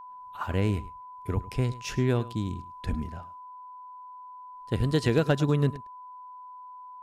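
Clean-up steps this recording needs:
clipped peaks rebuilt −13 dBFS
notch filter 1,000 Hz, Q 30
echo removal 105 ms −17.5 dB

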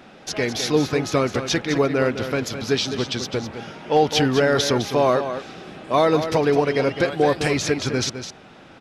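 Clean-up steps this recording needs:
clipped peaks rebuilt −7.5 dBFS
echo removal 208 ms −9.5 dB

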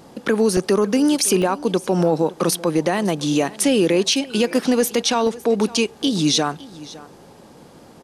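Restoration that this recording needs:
repair the gap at 0:00.57/0:01.42/0:04.13/0:05.27, 1.4 ms
echo removal 559 ms −19.5 dB

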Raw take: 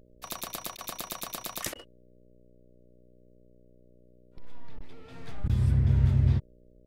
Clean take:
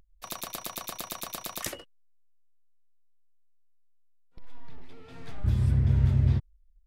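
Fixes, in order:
hum removal 60.9 Hz, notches 10
repair the gap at 0:00.77/0:01.74/0:04.79/0:05.48, 13 ms

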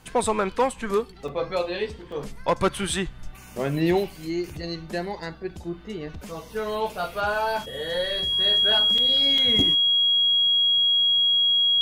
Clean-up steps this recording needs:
clipped peaks rebuilt −12.5 dBFS
notch filter 3,300 Hz, Q 30
repair the gap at 0:01.28/0:02.12/0:08.98/0:09.38, 3.4 ms

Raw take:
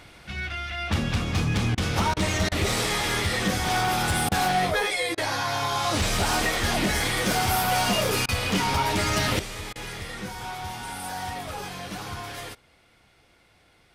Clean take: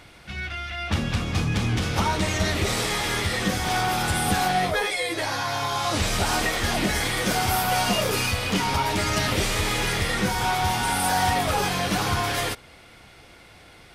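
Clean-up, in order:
clipped peaks rebuilt −17.5 dBFS
repair the gap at 0:01.75/0:02.14/0:02.49/0:04.29/0:05.15/0:08.26/0:09.73, 25 ms
level correction +11 dB, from 0:09.39

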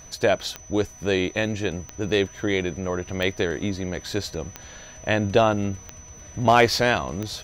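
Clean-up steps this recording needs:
clipped peaks rebuilt −6.5 dBFS
click removal
notch filter 6,000 Hz, Q 30

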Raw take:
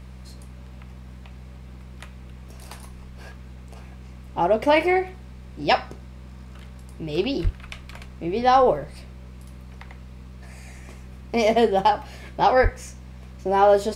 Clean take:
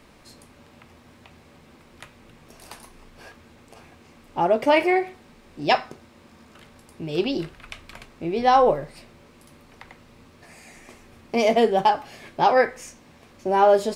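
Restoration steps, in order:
hum removal 63.3 Hz, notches 3
0:07.43–0:07.55: high-pass filter 140 Hz 24 dB per octave
0:12.62–0:12.74: high-pass filter 140 Hz 24 dB per octave

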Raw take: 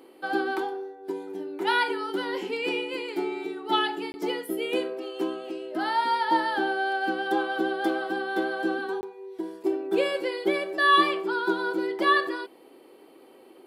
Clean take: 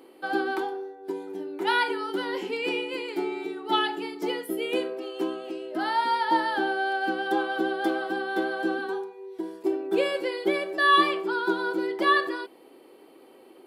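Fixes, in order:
repair the gap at 0:04.12/0:09.01, 20 ms

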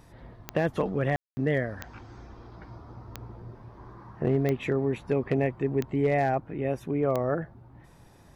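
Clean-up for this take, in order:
clipped peaks rebuilt −16.5 dBFS
click removal
ambience match 0:01.16–0:01.37

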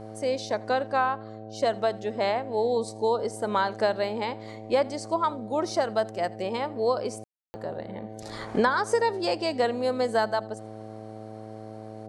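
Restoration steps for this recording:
hum removal 108.8 Hz, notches 7
ambience match 0:07.24–0:07.54
echo removal 82 ms −23 dB

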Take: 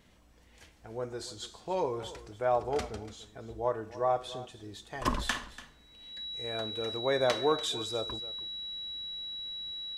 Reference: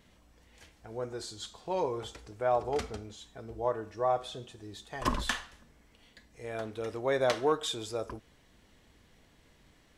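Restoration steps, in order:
notch filter 3,900 Hz, Q 30
echo removal 289 ms −16.5 dB

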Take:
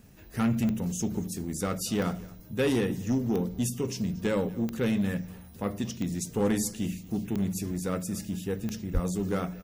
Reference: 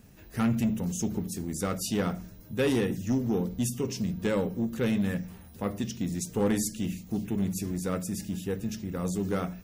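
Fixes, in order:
click removal
0:08.93–0:09.05: high-pass filter 140 Hz 24 dB per octave
echo removal 232 ms −22 dB

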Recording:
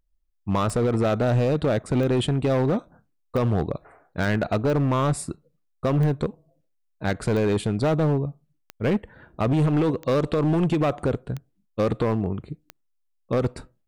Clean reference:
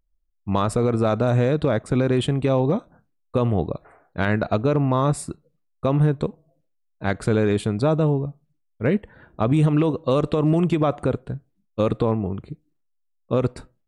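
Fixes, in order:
clipped peaks rebuilt −17 dBFS
click removal

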